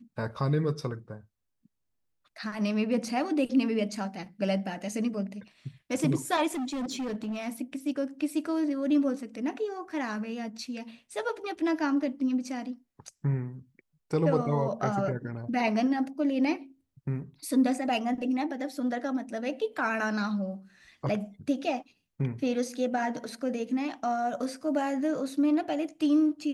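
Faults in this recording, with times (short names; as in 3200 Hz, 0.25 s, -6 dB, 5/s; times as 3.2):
6.54–7.48 clipped -29.5 dBFS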